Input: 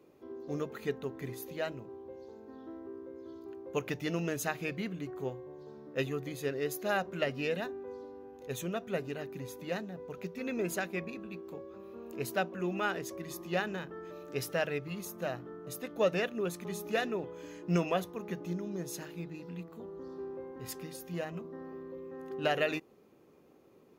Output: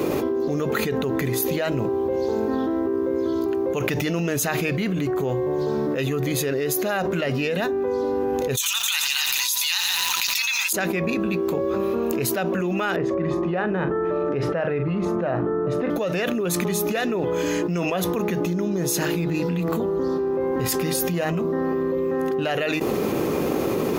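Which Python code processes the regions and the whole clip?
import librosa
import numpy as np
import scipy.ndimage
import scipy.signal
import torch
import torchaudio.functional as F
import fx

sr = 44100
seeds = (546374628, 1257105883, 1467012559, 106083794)

y = fx.chain(x, sr, fx.steep_highpass(hz=840.0, slope=96),
    fx.high_shelf_res(hz=2500.0, db=14.0, q=1.5),
    fx.echo_crushed(ms=87, feedback_pct=80, bits=9, wet_db=-14.0), at=(8.57, 10.73))
y = fx.chain(y, sr, fx.lowpass(hz=1500.0, slope=12),
    fx.doubler(ms=43.0, db=-13.5), at=(12.96, 15.9))
y = fx.high_shelf(y, sr, hz=8700.0, db=3.5)
y = fx.env_flatten(y, sr, amount_pct=100)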